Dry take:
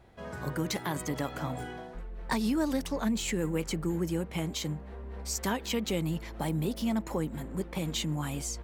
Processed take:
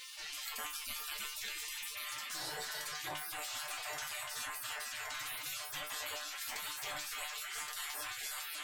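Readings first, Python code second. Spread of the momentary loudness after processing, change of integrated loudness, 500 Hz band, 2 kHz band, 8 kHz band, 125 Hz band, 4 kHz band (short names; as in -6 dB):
1 LU, -7.0 dB, -18.0 dB, 0.0 dB, -2.0 dB, -29.0 dB, -1.0 dB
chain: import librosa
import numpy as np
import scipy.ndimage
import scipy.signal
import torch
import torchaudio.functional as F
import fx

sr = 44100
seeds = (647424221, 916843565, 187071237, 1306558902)

y = fx.echo_feedback(x, sr, ms=1122, feedback_pct=27, wet_db=-9)
y = fx.spec_repair(y, sr, seeds[0], start_s=1.85, length_s=0.93, low_hz=990.0, high_hz=3600.0, source='both')
y = fx.peak_eq(y, sr, hz=420.0, db=2.5, octaves=0.55)
y = fx.hum_notches(y, sr, base_hz=50, count=7)
y = fx.echo_tape(y, sr, ms=292, feedback_pct=38, wet_db=-7.0, lp_hz=3400.0, drive_db=18.0, wow_cents=24)
y = fx.spec_gate(y, sr, threshold_db=-30, keep='weak')
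y = fx.rider(y, sr, range_db=4, speed_s=0.5)
y = fx.high_shelf(y, sr, hz=3900.0, db=-6.0)
y = fx.comb_fb(y, sr, f0_hz=150.0, decay_s=0.2, harmonics='all', damping=0.0, mix_pct=90)
y = fx.env_flatten(y, sr, amount_pct=70)
y = y * 10.0 ** (17.0 / 20.0)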